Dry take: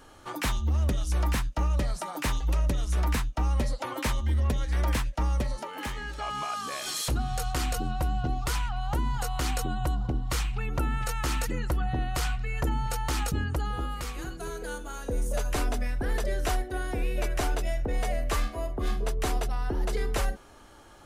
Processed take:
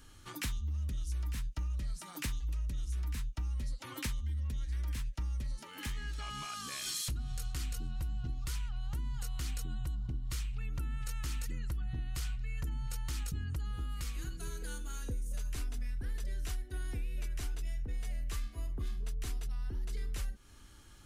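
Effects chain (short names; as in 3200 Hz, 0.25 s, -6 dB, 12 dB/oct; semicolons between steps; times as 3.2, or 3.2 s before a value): passive tone stack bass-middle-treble 6-0-2; compressor 6:1, threshold -47 dBFS, peak gain reduction 11.5 dB; gain +13 dB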